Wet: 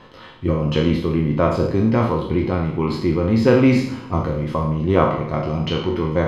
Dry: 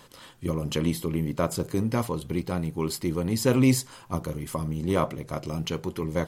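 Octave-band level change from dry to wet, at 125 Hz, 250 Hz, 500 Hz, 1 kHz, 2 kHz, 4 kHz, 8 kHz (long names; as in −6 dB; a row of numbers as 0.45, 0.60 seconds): +8.0 dB, +8.0 dB, +9.5 dB, +9.5 dB, +8.5 dB, +4.5 dB, below −10 dB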